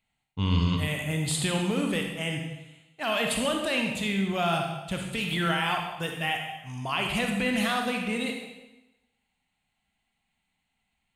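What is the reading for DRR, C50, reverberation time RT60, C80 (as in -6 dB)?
2.0 dB, 3.5 dB, 1.0 s, 5.5 dB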